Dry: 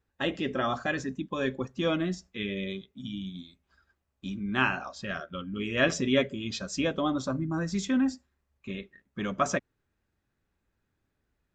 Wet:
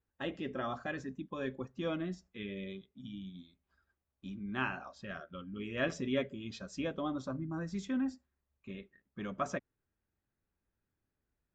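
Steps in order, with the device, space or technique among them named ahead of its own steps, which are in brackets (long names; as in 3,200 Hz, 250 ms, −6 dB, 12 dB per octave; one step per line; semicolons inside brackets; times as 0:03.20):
behind a face mask (high-shelf EQ 3,300 Hz −8 dB)
level −8 dB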